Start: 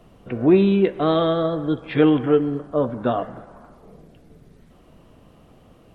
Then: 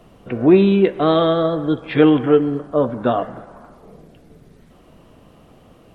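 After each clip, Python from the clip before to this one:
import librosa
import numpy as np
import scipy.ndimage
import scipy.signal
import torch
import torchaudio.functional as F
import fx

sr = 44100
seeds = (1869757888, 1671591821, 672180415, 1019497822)

y = fx.low_shelf(x, sr, hz=150.0, db=-3.5)
y = F.gain(torch.from_numpy(y), 4.0).numpy()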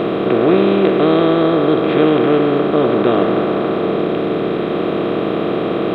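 y = fx.bin_compress(x, sr, power=0.2)
y = F.gain(torch.from_numpy(y), -5.5).numpy()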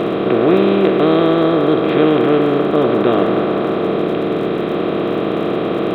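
y = fx.dmg_crackle(x, sr, seeds[0], per_s=33.0, level_db=-32.0)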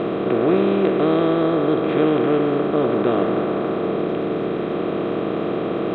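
y = fx.air_absorb(x, sr, metres=170.0)
y = F.gain(torch.from_numpy(y), -4.5).numpy()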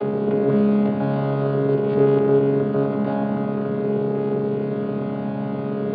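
y = fx.chord_vocoder(x, sr, chord='bare fifth', root=49)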